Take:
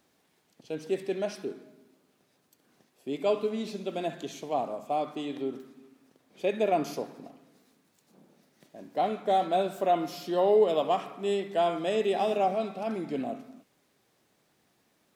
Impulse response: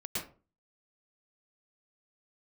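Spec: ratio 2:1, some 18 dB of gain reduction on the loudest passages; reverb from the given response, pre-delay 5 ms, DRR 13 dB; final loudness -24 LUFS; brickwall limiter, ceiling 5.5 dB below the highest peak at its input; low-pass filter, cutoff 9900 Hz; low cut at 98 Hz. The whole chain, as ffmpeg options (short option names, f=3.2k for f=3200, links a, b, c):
-filter_complex "[0:a]highpass=98,lowpass=9.9k,acompressor=threshold=-53dB:ratio=2,alimiter=level_in=12dB:limit=-24dB:level=0:latency=1,volume=-12dB,asplit=2[a][b];[1:a]atrim=start_sample=2205,adelay=5[c];[b][c]afir=irnorm=-1:irlink=0,volume=-16dB[d];[a][d]amix=inputs=2:normalize=0,volume=22.5dB"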